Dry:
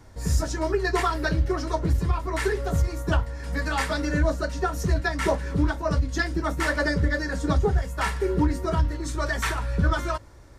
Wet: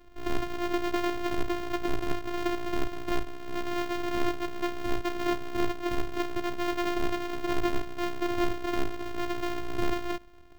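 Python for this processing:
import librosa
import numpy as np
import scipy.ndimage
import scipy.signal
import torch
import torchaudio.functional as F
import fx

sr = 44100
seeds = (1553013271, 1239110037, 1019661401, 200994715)

p1 = np.r_[np.sort(x[:len(x) // 128 * 128].reshape(-1, 128), axis=1).ravel(), x[len(x) // 128 * 128:]]
p2 = fx.bass_treble(p1, sr, bass_db=4, treble_db=-5)
p3 = np.clip(10.0 ** (15.0 / 20.0) * p2, -1.0, 1.0) / 10.0 ** (15.0 / 20.0)
p4 = p2 + (p3 * librosa.db_to_amplitude(-4.5))
p5 = fx.robotise(p4, sr, hz=350.0)
y = p5 * librosa.db_to_amplitude(-9.0)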